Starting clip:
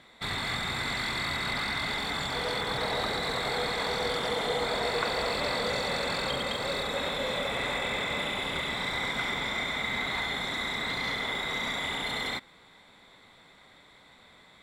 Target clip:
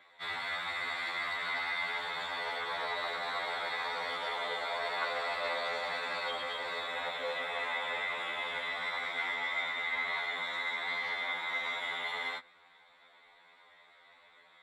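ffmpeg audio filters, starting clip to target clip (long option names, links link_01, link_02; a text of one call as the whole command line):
ffmpeg -i in.wav -filter_complex "[0:a]acrossover=split=500 3400:gain=0.112 1 0.224[link_01][link_02][link_03];[link_01][link_02][link_03]amix=inputs=3:normalize=0,afftfilt=real='re*2*eq(mod(b,4),0)':imag='im*2*eq(mod(b,4),0)':win_size=2048:overlap=0.75" out.wav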